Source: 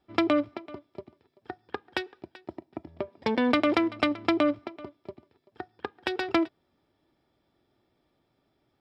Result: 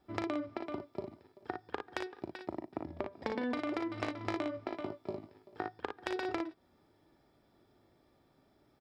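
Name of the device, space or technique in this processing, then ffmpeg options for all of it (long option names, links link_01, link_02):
serial compression, peaks first: -filter_complex "[0:a]acompressor=threshold=-30dB:ratio=6,acompressor=threshold=-38dB:ratio=3,asettb=1/sr,asplit=3[link_01][link_02][link_03];[link_01]atrim=end=3.894[link_04];[link_02]atrim=start=3.89:end=5.75,asetpts=PTS-STARTPTS,afade=type=in:duration=0.004:curve=qsin,afade=type=out:start_time=1.856:duration=0.004:curve=qsin,asplit=2[link_05][link_06];[link_06]adelay=19,volume=-6dB[link_07];[link_05][link_07]amix=inputs=2:normalize=0,atrim=end_sample=82026[link_08];[link_03]atrim=start=5.746[link_09];[link_04][link_08]acrossfade=duration=0.004:curve1=hsin:curve2=qsin[link_10];[link_10][link_09]acrossfade=duration=0.004:curve1=qsin:curve2=hsin,equalizer=frequency=3000:width=1.7:gain=-5.5,aecho=1:1:38|57:0.355|0.501,volume=3dB"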